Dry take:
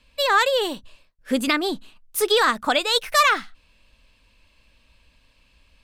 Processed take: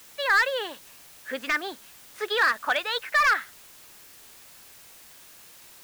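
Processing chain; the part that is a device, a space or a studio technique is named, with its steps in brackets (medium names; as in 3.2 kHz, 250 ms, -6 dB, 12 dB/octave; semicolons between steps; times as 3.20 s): drive-through speaker (band-pass 520–3300 Hz; peaking EQ 1.7 kHz +10.5 dB 0.56 oct; hard clipper -10.5 dBFS, distortion -12 dB; white noise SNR 21 dB); trim -5.5 dB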